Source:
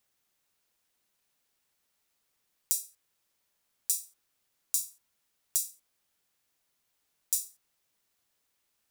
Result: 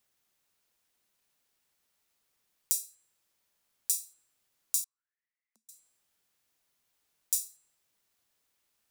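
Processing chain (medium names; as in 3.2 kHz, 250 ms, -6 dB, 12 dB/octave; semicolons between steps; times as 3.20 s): de-hum 271.3 Hz, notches 38; 4.84–5.69 s: auto-wah 220–2100 Hz, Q 13, down, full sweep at -34.5 dBFS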